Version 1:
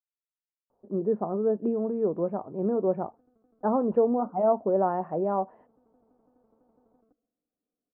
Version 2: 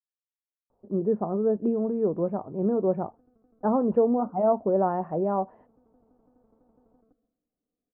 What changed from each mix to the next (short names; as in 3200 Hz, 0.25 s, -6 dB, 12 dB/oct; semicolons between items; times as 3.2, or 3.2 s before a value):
background: send +6.0 dB; master: add low shelf 130 Hz +10.5 dB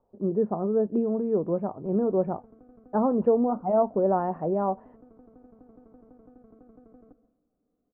speech: entry -0.70 s; background +11.0 dB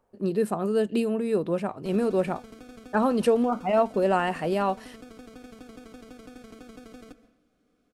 background +7.0 dB; master: remove LPF 1000 Hz 24 dB/oct